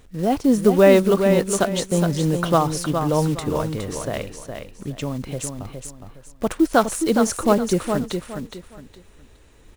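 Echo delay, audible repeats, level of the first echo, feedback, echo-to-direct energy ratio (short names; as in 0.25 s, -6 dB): 0.414 s, 3, -6.5 dB, 27%, -6.0 dB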